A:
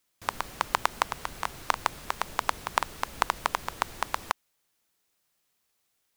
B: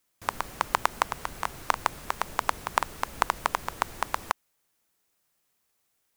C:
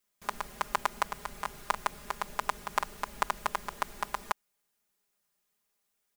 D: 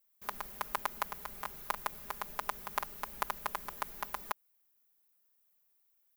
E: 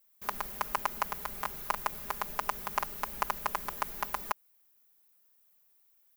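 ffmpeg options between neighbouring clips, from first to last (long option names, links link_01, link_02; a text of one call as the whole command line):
ffmpeg -i in.wav -af "equalizer=frequency=3800:width_type=o:width=1.4:gain=-3.5,volume=1.5dB" out.wav
ffmpeg -i in.wav -af "aecho=1:1:4.9:0.95,volume=-7.5dB" out.wav
ffmpeg -i in.wav -af "aexciter=amount=4.3:drive=4.3:freq=11000,volume=-5.5dB" out.wav
ffmpeg -i in.wav -af "asoftclip=type=tanh:threshold=-19.5dB,volume=6dB" out.wav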